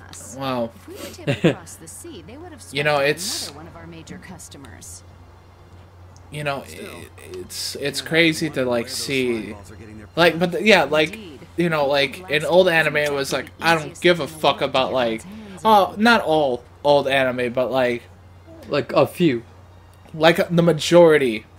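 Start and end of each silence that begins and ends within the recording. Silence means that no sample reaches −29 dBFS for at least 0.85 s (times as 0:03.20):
0:04.96–0:06.33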